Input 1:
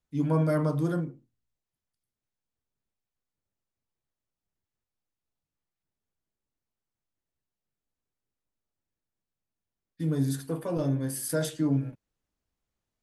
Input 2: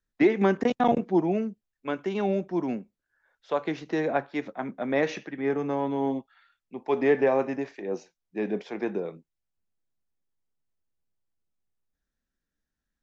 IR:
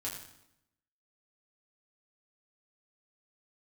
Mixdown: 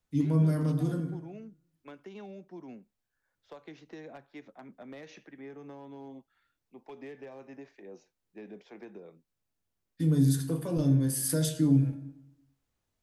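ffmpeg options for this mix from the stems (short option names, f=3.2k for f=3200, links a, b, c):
-filter_complex "[0:a]volume=1.5dB,asplit=2[a][b];[b]volume=-8.5dB[c];[1:a]acrossover=split=120|3000[d][e][f];[e]acompressor=threshold=-29dB:ratio=5[g];[d][g][f]amix=inputs=3:normalize=0,asoftclip=type=hard:threshold=-23.5dB,volume=-13dB,asplit=2[h][i];[i]apad=whole_len=574325[j];[a][j]sidechaincompress=threshold=-46dB:ratio=8:attack=16:release=547[k];[2:a]atrim=start_sample=2205[l];[c][l]afir=irnorm=-1:irlink=0[m];[k][h][m]amix=inputs=3:normalize=0,acrossover=split=350|3000[n][o][p];[o]acompressor=threshold=-47dB:ratio=2[q];[n][q][p]amix=inputs=3:normalize=0"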